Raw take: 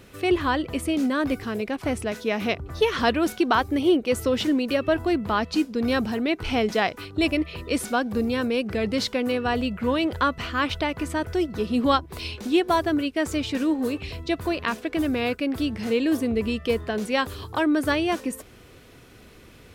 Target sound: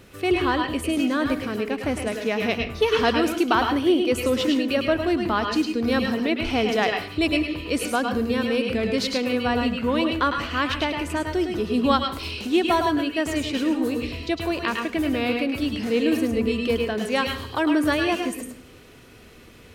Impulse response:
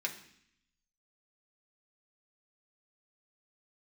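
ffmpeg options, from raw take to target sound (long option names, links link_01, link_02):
-filter_complex "[0:a]asplit=2[link_01][link_02];[1:a]atrim=start_sample=2205,asetrate=52920,aresample=44100,adelay=104[link_03];[link_02][link_03]afir=irnorm=-1:irlink=0,volume=-3.5dB[link_04];[link_01][link_04]amix=inputs=2:normalize=0"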